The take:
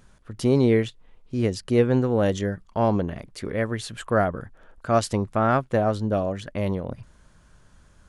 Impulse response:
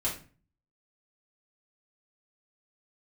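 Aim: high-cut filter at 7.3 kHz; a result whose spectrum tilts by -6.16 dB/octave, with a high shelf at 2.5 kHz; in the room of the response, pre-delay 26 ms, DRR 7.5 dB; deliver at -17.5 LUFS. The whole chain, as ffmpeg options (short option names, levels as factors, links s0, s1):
-filter_complex "[0:a]lowpass=7300,highshelf=f=2500:g=-6,asplit=2[s0][s1];[1:a]atrim=start_sample=2205,adelay=26[s2];[s1][s2]afir=irnorm=-1:irlink=0,volume=0.211[s3];[s0][s3]amix=inputs=2:normalize=0,volume=2"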